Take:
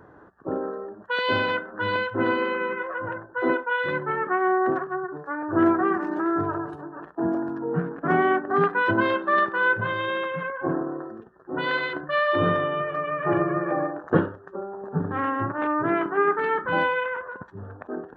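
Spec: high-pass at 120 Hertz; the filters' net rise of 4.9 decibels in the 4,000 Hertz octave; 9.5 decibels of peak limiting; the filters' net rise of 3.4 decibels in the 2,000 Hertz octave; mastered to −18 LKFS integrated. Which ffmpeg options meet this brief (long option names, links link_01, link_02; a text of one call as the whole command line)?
ffmpeg -i in.wav -af "highpass=120,equalizer=frequency=2000:width_type=o:gain=4,equalizer=frequency=4000:width_type=o:gain=5,volume=8dB,alimiter=limit=-7.5dB:level=0:latency=1" out.wav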